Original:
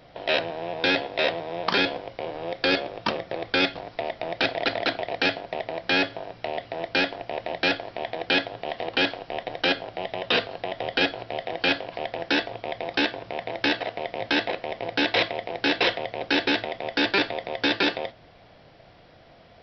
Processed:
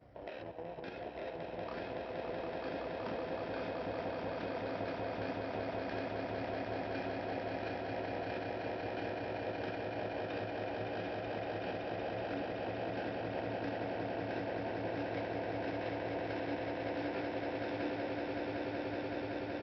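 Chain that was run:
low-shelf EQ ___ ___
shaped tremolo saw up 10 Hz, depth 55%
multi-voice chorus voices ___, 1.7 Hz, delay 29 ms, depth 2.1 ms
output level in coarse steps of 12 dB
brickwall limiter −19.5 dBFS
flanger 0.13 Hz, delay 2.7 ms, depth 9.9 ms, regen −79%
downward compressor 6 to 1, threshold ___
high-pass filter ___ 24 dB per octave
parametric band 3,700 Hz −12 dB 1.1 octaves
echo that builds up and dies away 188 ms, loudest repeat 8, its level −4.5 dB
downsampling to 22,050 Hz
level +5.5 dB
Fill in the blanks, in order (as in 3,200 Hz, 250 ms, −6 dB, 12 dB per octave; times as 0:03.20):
340 Hz, +8.5 dB, 6, −47 dBFS, 48 Hz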